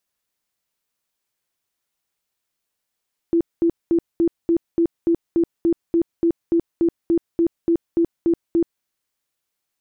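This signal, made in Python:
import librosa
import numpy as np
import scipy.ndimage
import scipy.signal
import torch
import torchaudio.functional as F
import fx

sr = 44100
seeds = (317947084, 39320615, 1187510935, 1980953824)

y = fx.tone_burst(sr, hz=336.0, cycles=26, every_s=0.29, bursts=19, level_db=-13.5)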